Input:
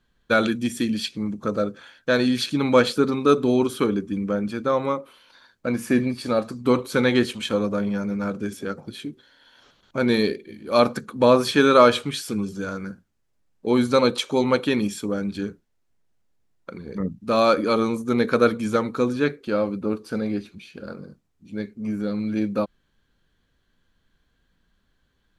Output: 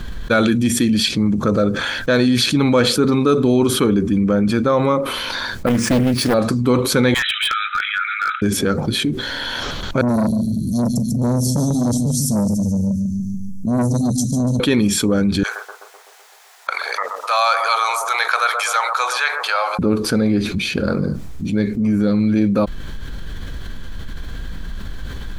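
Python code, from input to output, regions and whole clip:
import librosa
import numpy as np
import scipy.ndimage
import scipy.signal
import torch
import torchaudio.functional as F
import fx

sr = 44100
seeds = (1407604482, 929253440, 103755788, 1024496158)

y = fx.chain(x, sr, fx.brickwall_lowpass(high_hz=9800.0),
    fx.resample_bad(factor=3, down='none', up='hold'),
    fx.doppler_dist(depth_ms=0.81), at=(5.66, 6.34))
y = fx.chain(y, sr, fx.brickwall_bandpass(low_hz=1200.0, high_hz=4000.0),
    fx.overload_stage(gain_db=29.5), at=(7.14, 8.42))
y = fx.chain(y, sr, fx.cheby1_bandstop(low_hz=230.0, high_hz=5700.0, order=4),
    fx.echo_feedback(ms=145, feedback_pct=46, wet_db=-8),
    fx.transformer_sat(knee_hz=660.0), at=(10.01, 14.6))
y = fx.chain(y, sr, fx.ellip_highpass(hz=740.0, order=4, stop_db=70),
    fx.echo_bbd(ms=127, stages=1024, feedback_pct=66, wet_db=-15), at=(15.43, 19.79))
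y = fx.low_shelf(y, sr, hz=110.0, db=11.5)
y = fx.notch(y, sr, hz=2800.0, q=24.0)
y = fx.env_flatten(y, sr, amount_pct=70)
y = y * 10.0 ** (-1.0 / 20.0)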